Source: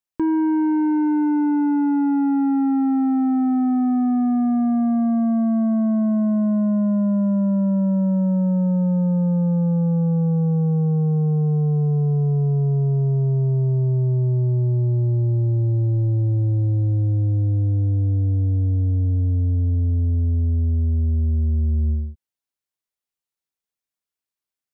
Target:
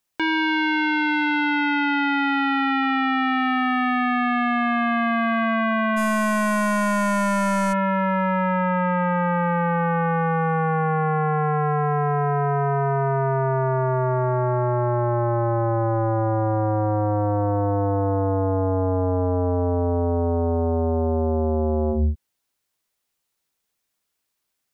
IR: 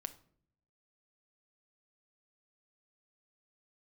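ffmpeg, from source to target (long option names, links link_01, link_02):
-filter_complex "[0:a]aeval=exprs='0.141*sin(PI/2*2.51*val(0)/0.141)':channel_layout=same,asplit=3[link_01][link_02][link_03];[link_01]afade=type=out:start_time=5.96:duration=0.02[link_04];[link_02]aeval=exprs='0.141*(cos(1*acos(clip(val(0)/0.141,-1,1)))-cos(1*PI/2))+0.00501*(cos(4*acos(clip(val(0)/0.141,-1,1)))-cos(4*PI/2))+0.00794*(cos(5*acos(clip(val(0)/0.141,-1,1)))-cos(5*PI/2))+0.0178*(cos(6*acos(clip(val(0)/0.141,-1,1)))-cos(6*PI/2))+0.01*(cos(7*acos(clip(val(0)/0.141,-1,1)))-cos(7*PI/2))':channel_layout=same,afade=type=in:start_time=5.96:duration=0.02,afade=type=out:start_time=7.72:duration=0.02[link_05];[link_03]afade=type=in:start_time=7.72:duration=0.02[link_06];[link_04][link_05][link_06]amix=inputs=3:normalize=0"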